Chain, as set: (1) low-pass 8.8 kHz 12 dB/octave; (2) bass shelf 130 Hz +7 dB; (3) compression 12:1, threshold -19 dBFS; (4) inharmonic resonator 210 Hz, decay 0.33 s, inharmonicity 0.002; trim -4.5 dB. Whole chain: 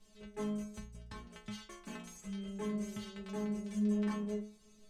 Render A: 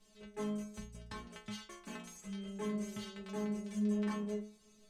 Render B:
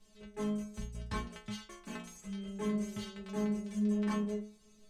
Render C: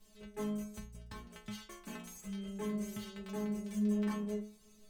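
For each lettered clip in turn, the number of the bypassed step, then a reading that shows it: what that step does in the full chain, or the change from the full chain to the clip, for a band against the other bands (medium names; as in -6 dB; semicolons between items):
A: 2, 125 Hz band -2.0 dB; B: 3, mean gain reduction 2.0 dB; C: 1, 8 kHz band +1.5 dB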